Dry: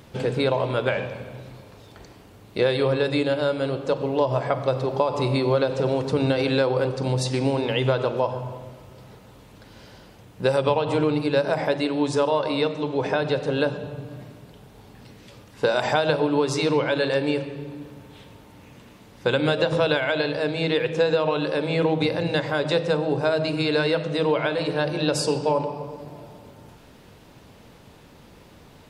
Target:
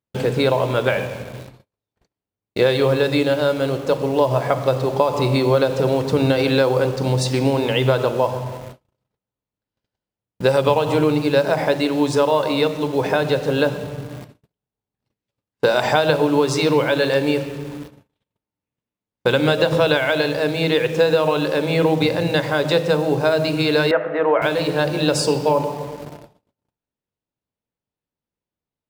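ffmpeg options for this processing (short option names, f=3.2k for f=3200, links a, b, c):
-filter_complex "[0:a]agate=range=-43dB:threshold=-40dB:ratio=16:detection=peak,asplit=2[a][b];[b]acrusher=bits=5:mix=0:aa=0.000001,volume=-7.5dB[c];[a][c]amix=inputs=2:normalize=0,asettb=1/sr,asplit=3[d][e][f];[d]atrim=end=23.914[g];[e]atrim=start=23.91:end=24.42,asetpts=PTS-STARTPTS,afade=t=in:d=0.004:c=qsin,afade=t=out:st=0.506:d=0.004:c=qsin,highpass=350,equalizer=f=700:t=q:w=4:g=7,equalizer=f=1.3k:t=q:w=4:g=5,equalizer=f=1.8k:t=q:w=4:g=6,lowpass=f=2.1k:w=0.5412,lowpass=f=2.1k:w=1.3066[h];[f]atrim=start=24.416[i];[g][h]acrossfade=d=0.004:c1=hsin:c2=qsin[j];[j][i]acrossfade=d=0.004:c1=qsin:c2=hsin,volume=1.5dB"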